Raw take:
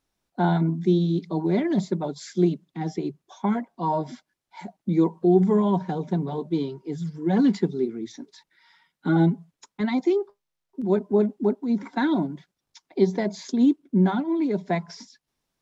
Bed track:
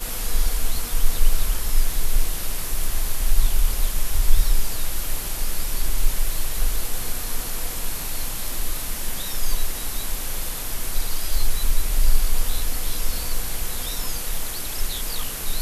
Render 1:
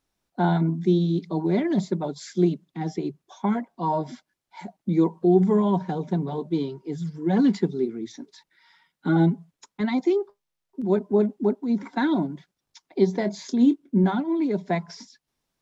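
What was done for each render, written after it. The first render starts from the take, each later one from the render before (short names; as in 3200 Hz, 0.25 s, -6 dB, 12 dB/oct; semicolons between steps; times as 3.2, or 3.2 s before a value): 13.17–14.04 doubler 25 ms -12.5 dB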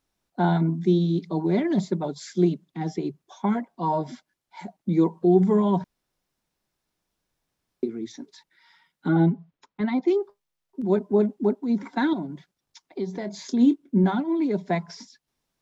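5.84–7.83 room tone; 9.08–10.08 air absorption 210 m; 12.13–13.42 compressor 2:1, threshold -32 dBFS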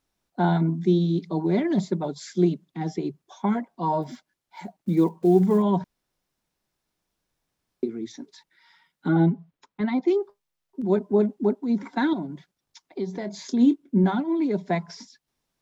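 4.02–5.63 block floating point 7-bit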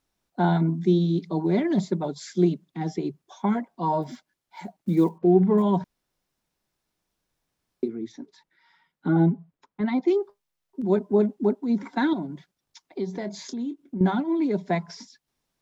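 5.18–5.58 LPF 2100 Hz; 7.88–9.86 high shelf 2300 Hz -9 dB; 13.37–14.01 compressor 3:1, threshold -32 dBFS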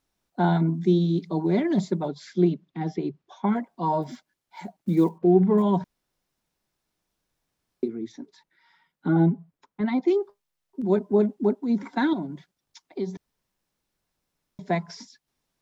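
2.08–3.56 LPF 4100 Hz; 13.17–14.59 room tone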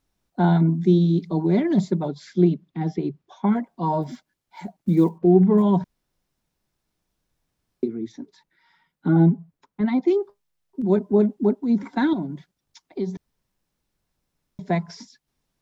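low shelf 220 Hz +7.5 dB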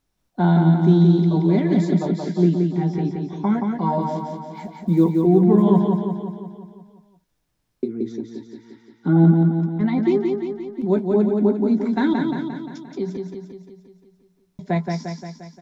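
doubler 18 ms -11.5 dB; feedback echo 0.175 s, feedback 57%, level -4 dB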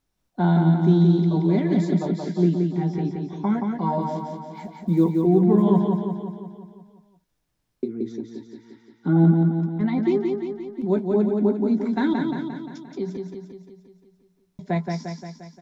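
gain -2.5 dB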